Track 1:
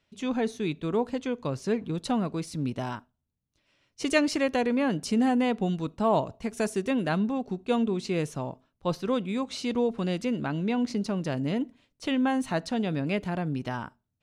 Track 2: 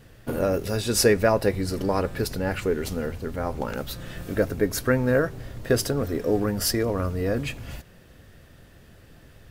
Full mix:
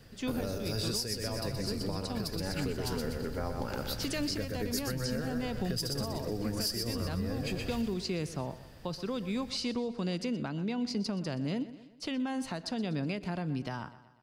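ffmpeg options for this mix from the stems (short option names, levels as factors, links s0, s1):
-filter_complex "[0:a]alimiter=limit=0.112:level=0:latency=1,volume=0.75,asplit=2[s0][s1];[s1]volume=0.141[s2];[1:a]volume=0.596,asplit=2[s3][s4];[s4]volume=0.531[s5];[s2][s5]amix=inputs=2:normalize=0,aecho=0:1:123|246|369|492|615|738|861:1|0.47|0.221|0.104|0.0488|0.0229|0.0108[s6];[s0][s3][s6]amix=inputs=3:normalize=0,equalizer=f=4800:t=o:w=0.24:g=11,acrossover=split=190|3000[s7][s8][s9];[s8]acompressor=threshold=0.0251:ratio=6[s10];[s7][s10][s9]amix=inputs=3:normalize=0,alimiter=limit=0.075:level=0:latency=1:release=489"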